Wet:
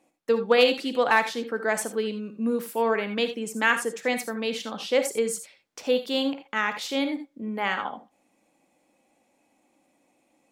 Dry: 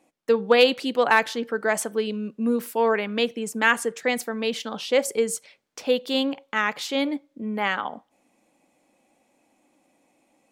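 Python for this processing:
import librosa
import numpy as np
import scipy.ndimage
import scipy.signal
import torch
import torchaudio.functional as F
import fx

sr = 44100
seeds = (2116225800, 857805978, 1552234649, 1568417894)

y = fx.rev_gated(x, sr, seeds[0], gate_ms=100, shape='rising', drr_db=8.5)
y = y * 10.0 ** (-2.5 / 20.0)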